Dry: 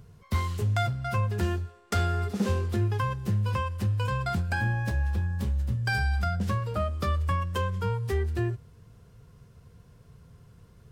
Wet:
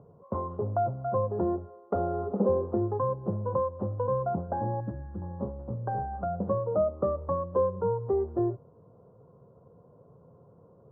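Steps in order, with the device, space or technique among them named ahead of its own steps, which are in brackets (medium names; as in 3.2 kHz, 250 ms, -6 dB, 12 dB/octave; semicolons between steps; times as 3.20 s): 4.80–5.22 s: high-order bell 680 Hz -14.5 dB; inverse Chebyshev low-pass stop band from 2.1 kHz, stop band 40 dB; kitchen radio (cabinet simulation 220–3500 Hz, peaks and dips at 220 Hz -3 dB, 550 Hz +8 dB, 1.6 kHz -6 dB); dynamic bell 1.8 kHz, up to -5 dB, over -44 dBFS, Q 0.88; trim +5 dB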